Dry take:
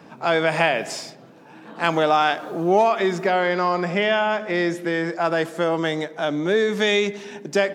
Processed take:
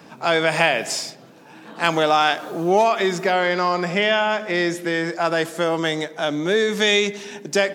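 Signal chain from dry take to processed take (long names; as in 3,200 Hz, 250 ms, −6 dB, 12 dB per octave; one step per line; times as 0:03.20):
high-shelf EQ 3,000 Hz +8.5 dB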